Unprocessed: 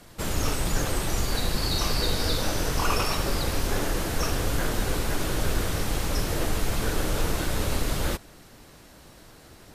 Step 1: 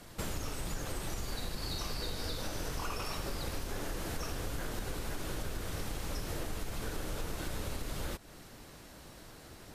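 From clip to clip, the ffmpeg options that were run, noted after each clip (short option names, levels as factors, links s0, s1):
-af "acompressor=threshold=0.0251:ratio=6,volume=0.794"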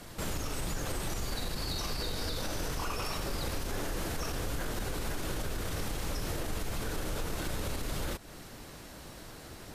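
-af "alimiter=level_in=2:limit=0.0631:level=0:latency=1:release=18,volume=0.501,volume=1.68"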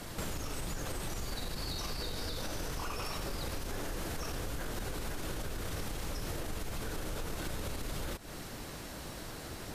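-af "acompressor=threshold=0.0126:ratio=5,volume=1.5"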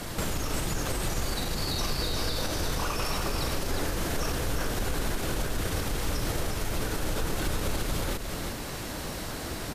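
-af "aecho=1:1:357:0.531,volume=2.37"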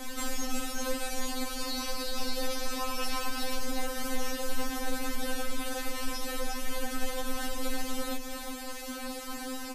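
-af "afftfilt=real='re*3.46*eq(mod(b,12),0)':imag='im*3.46*eq(mod(b,12),0)':win_size=2048:overlap=0.75"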